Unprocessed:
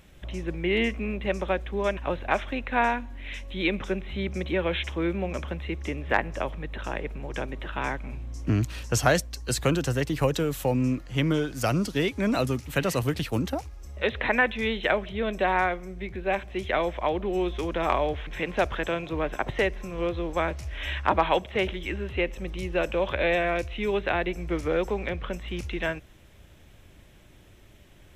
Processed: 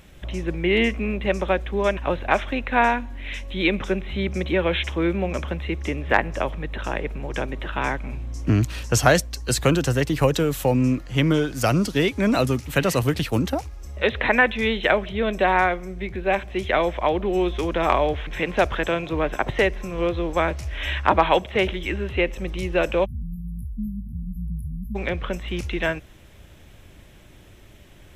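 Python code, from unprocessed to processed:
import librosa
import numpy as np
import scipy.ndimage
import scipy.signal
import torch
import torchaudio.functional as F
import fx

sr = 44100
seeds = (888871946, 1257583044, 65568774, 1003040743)

y = fx.spec_erase(x, sr, start_s=23.05, length_s=1.91, low_hz=250.0, high_hz=10000.0)
y = y * librosa.db_to_amplitude(5.0)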